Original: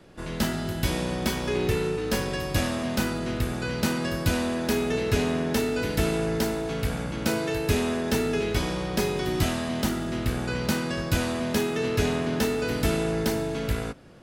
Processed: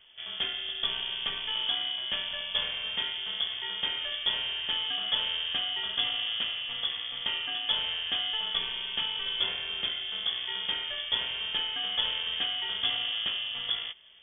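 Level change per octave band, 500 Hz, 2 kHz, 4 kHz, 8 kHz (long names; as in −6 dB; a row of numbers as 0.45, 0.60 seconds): −22.5 dB, −3.5 dB, +9.5 dB, below −40 dB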